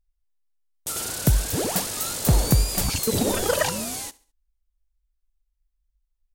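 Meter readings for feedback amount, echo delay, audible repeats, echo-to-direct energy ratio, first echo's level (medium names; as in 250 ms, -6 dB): 37%, 69 ms, 2, -21.5 dB, -22.0 dB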